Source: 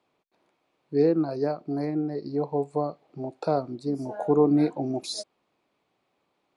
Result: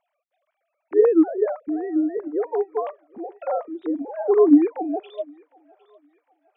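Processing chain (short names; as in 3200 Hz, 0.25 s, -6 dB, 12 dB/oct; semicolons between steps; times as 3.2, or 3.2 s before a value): sine-wave speech; thinning echo 0.757 s, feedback 61%, high-pass 960 Hz, level -21 dB; gain +5 dB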